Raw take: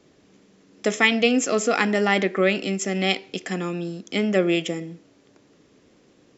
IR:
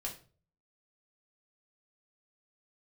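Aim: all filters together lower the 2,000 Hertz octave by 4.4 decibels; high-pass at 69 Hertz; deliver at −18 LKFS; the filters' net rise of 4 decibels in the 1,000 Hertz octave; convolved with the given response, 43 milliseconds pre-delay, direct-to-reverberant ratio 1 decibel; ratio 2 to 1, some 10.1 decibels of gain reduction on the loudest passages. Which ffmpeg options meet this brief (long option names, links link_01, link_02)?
-filter_complex "[0:a]highpass=69,equalizer=frequency=1000:width_type=o:gain=7.5,equalizer=frequency=2000:width_type=o:gain=-7,acompressor=threshold=-33dB:ratio=2,asplit=2[link_01][link_02];[1:a]atrim=start_sample=2205,adelay=43[link_03];[link_02][link_03]afir=irnorm=-1:irlink=0,volume=-1dB[link_04];[link_01][link_04]amix=inputs=2:normalize=0,volume=10.5dB"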